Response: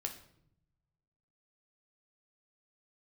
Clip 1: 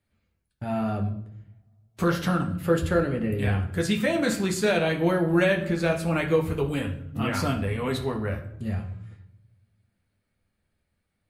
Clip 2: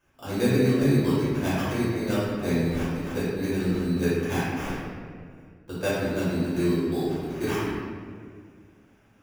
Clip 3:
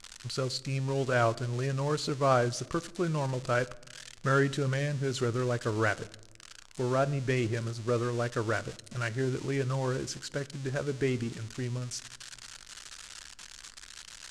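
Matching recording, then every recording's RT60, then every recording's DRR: 1; 0.70 s, 2.0 s, not exponential; 2.5, -12.5, 15.5 dB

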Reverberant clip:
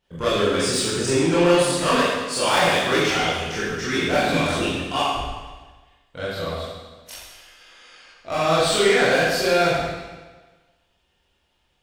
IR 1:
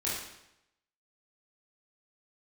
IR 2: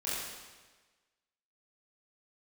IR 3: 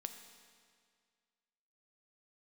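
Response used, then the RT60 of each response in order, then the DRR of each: 2; 0.85, 1.3, 2.0 s; -8.0, -10.5, 7.0 dB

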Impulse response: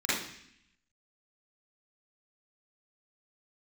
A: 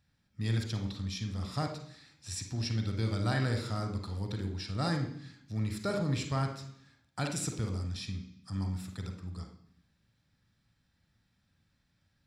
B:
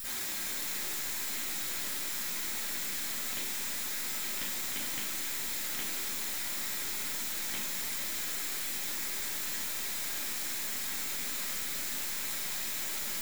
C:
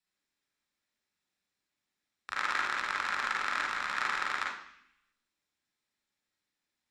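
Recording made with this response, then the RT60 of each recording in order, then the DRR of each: B; 0.70, 0.70, 0.70 s; 3.5, -12.0, -3.5 dB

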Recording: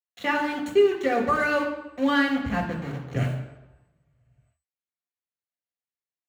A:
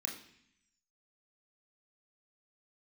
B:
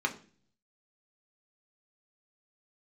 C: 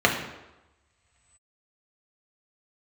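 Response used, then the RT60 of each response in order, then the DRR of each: C; 0.65, 0.40, 1.0 s; -0.5, 2.0, -0.5 dB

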